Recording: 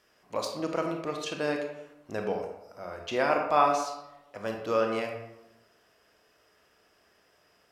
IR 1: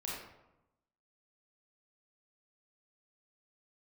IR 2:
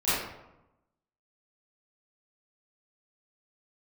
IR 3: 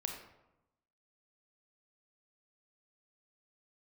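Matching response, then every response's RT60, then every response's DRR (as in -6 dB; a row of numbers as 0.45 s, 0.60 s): 3; 0.95 s, 0.95 s, 0.95 s; -6.0 dB, -15.5 dB, 2.0 dB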